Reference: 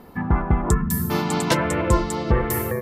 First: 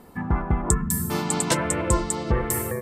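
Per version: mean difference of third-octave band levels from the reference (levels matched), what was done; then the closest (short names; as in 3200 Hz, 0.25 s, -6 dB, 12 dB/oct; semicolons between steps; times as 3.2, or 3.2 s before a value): 1.5 dB: bell 8300 Hz +12.5 dB 0.6 oct; gain -3.5 dB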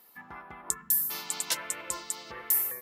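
11.0 dB: differentiator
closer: first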